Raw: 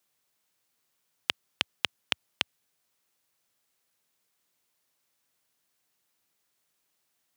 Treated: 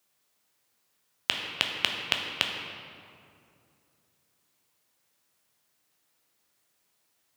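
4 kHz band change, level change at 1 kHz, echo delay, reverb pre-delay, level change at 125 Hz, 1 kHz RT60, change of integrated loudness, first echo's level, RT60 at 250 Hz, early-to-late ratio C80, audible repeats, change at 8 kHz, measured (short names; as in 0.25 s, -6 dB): +3.5 dB, +4.5 dB, none, 9 ms, +5.0 dB, 2.3 s, +3.0 dB, none, 3.0 s, 4.5 dB, none, +3.0 dB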